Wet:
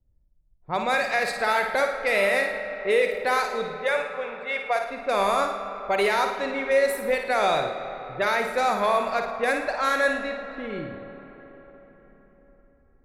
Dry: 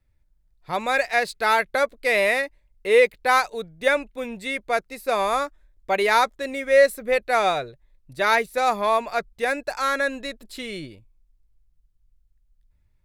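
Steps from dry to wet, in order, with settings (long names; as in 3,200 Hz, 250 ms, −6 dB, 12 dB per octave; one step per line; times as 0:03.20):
low-pass that shuts in the quiet parts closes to 560 Hz, open at −19 dBFS
0:03.76–0:04.81: low shelf with overshoot 420 Hz −14 dB, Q 1.5
brickwall limiter −14.5 dBFS, peak gain reduction 8.5 dB
flutter between parallel walls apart 9.5 metres, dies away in 0.49 s
comb and all-pass reverb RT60 4.8 s, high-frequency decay 0.5×, pre-delay 25 ms, DRR 9 dB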